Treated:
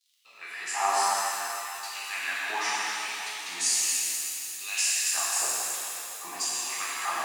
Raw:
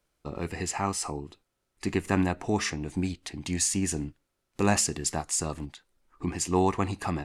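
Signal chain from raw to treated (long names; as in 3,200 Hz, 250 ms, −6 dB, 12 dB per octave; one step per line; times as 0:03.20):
surface crackle 82 per second −48 dBFS
auto-filter high-pass saw down 1.1 Hz 720–4,200 Hz
reverb with rising layers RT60 3 s, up +7 semitones, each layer −8 dB, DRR −9 dB
level −6.5 dB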